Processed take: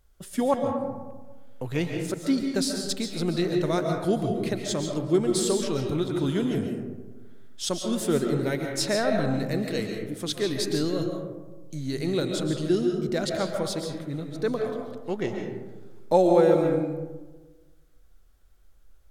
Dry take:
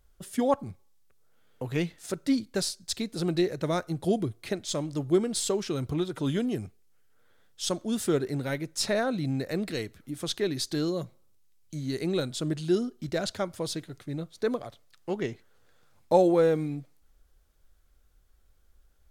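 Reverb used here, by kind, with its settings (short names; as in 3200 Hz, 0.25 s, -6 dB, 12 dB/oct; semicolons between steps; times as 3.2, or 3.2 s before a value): digital reverb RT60 1.3 s, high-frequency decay 0.35×, pre-delay 95 ms, DRR 2.5 dB; gain +1 dB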